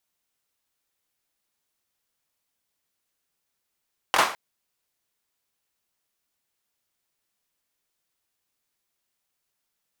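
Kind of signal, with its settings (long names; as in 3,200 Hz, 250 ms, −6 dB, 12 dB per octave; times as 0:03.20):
synth clap length 0.21 s, bursts 3, apart 22 ms, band 1,000 Hz, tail 0.40 s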